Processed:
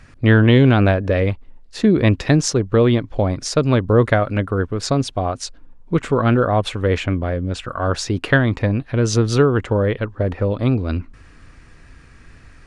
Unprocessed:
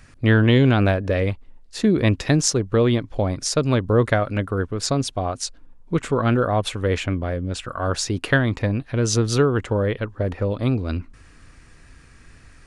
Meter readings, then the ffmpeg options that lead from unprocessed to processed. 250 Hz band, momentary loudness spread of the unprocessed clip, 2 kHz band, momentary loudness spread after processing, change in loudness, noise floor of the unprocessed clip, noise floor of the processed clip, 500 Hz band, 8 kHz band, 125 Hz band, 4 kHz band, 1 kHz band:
+3.5 dB, 9 LU, +3.0 dB, 9 LU, +3.5 dB, −49 dBFS, −45 dBFS, +3.5 dB, −2.0 dB, +3.5 dB, +0.5 dB, +3.5 dB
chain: -af "highshelf=frequency=6500:gain=-11,volume=3.5dB"

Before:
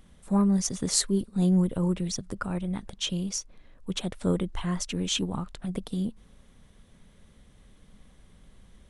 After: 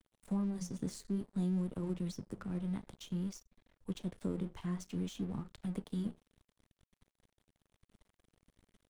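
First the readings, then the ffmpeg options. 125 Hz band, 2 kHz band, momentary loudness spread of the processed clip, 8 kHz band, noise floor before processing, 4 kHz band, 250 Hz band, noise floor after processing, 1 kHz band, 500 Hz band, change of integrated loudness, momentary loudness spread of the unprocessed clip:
−10.0 dB, −16.0 dB, 7 LU, −22.0 dB, −57 dBFS, −21.0 dB, −10.0 dB, below −85 dBFS, −14.5 dB, −12.0 dB, −11.0 dB, 11 LU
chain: -filter_complex "[0:a]flanger=delay=8.4:depth=6.9:regen=-67:speed=0.55:shape=sinusoidal,acrossover=split=91|370[link_01][link_02][link_03];[link_01]acompressor=threshold=-52dB:ratio=4[link_04];[link_02]acompressor=threshold=-33dB:ratio=4[link_05];[link_03]acompressor=threshold=-50dB:ratio=4[link_06];[link_04][link_05][link_06]amix=inputs=3:normalize=0,aeval=exprs='sgn(val(0))*max(abs(val(0))-0.00211,0)':channel_layout=same"

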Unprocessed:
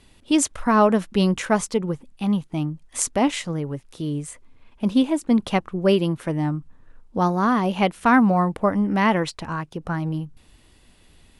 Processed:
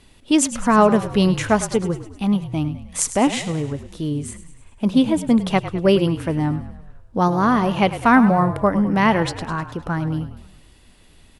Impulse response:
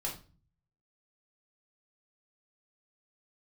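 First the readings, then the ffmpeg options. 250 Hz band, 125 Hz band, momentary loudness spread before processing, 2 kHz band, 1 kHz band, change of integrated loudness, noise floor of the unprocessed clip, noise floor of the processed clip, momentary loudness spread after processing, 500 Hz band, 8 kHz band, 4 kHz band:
+2.5 dB, +3.5 dB, 13 LU, +3.0 dB, +2.5 dB, +3.0 dB, −55 dBFS, −50 dBFS, 12 LU, +2.5 dB, +3.0 dB, +3.0 dB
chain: -filter_complex "[0:a]asplit=7[link_01][link_02][link_03][link_04][link_05][link_06][link_07];[link_02]adelay=103,afreqshift=-40,volume=-13dB[link_08];[link_03]adelay=206,afreqshift=-80,volume=-18dB[link_09];[link_04]adelay=309,afreqshift=-120,volume=-23.1dB[link_10];[link_05]adelay=412,afreqshift=-160,volume=-28.1dB[link_11];[link_06]adelay=515,afreqshift=-200,volume=-33.1dB[link_12];[link_07]adelay=618,afreqshift=-240,volume=-38.2dB[link_13];[link_01][link_08][link_09][link_10][link_11][link_12][link_13]amix=inputs=7:normalize=0,volume=2.5dB"

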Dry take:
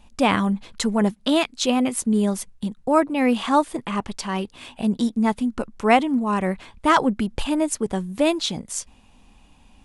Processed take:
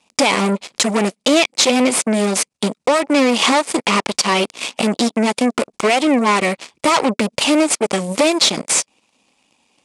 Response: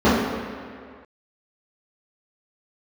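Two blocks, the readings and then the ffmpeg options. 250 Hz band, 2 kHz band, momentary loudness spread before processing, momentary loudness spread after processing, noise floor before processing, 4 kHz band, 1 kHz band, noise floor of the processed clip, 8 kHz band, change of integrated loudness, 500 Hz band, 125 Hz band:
+3.0 dB, +8.5 dB, 9 LU, 6 LU, −54 dBFS, +11.5 dB, +4.0 dB, −75 dBFS, +12.5 dB, +6.0 dB, +6.5 dB, +2.0 dB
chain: -filter_complex "[0:a]aemphasis=mode=production:type=50kf,bandreject=frequency=2100:width=23,acrossover=split=4300[link_01][link_02];[link_01]alimiter=limit=-11dB:level=0:latency=1:release=122[link_03];[link_03][link_02]amix=inputs=2:normalize=0,acompressor=threshold=-24dB:ratio=6,aeval=exprs='0.355*sin(PI/2*3.55*val(0)/0.355)':channel_layout=same,aeval=exprs='0.376*(cos(1*acos(clip(val(0)/0.376,-1,1)))-cos(1*PI/2))+0.15*(cos(2*acos(clip(val(0)/0.376,-1,1)))-cos(2*PI/2))+0.0596*(cos(7*acos(clip(val(0)/0.376,-1,1)))-cos(7*PI/2))':channel_layout=same,highpass=240,equalizer=frequency=550:width_type=q:width=4:gain=3,equalizer=frequency=1600:width_type=q:width=4:gain=-5,equalizer=frequency=2300:width_type=q:width=4:gain=5,equalizer=frequency=4900:width_type=q:width=4:gain=3,lowpass=frequency=8900:width=0.5412,lowpass=frequency=8900:width=1.3066"

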